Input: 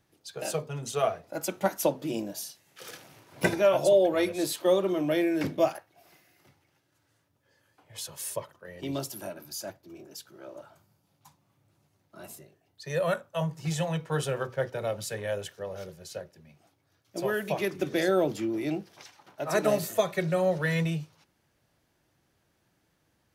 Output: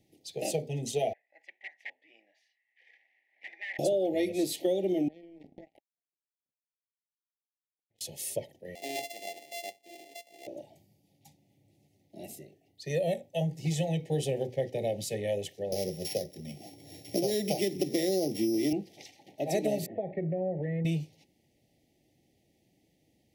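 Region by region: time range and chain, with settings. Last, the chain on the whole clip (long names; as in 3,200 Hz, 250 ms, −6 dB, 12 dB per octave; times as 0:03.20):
0:01.13–0:03.79: wrap-around overflow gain 19.5 dB + flat-topped band-pass 1,600 Hz, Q 2.4
0:05.08–0:08.01: low-pass filter 1,100 Hz 6 dB per octave + downward compressor 8 to 1, threshold −40 dBFS + power curve on the samples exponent 3
0:08.75–0:10.47: samples sorted by size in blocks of 64 samples + high-pass filter 590 Hz
0:15.72–0:18.73: samples sorted by size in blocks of 8 samples + high-shelf EQ 8,000 Hz +5.5 dB + multiband upward and downward compressor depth 70%
0:19.86–0:20.85: low-pass filter 1,600 Hz 24 dB per octave + downward compressor 2.5 to 1, threshold −33 dBFS
whole clip: Chebyshev band-stop filter 820–1,900 Hz, order 4; parametric band 260 Hz +6.5 dB 1.3 octaves; downward compressor 6 to 1, threshold −25 dBFS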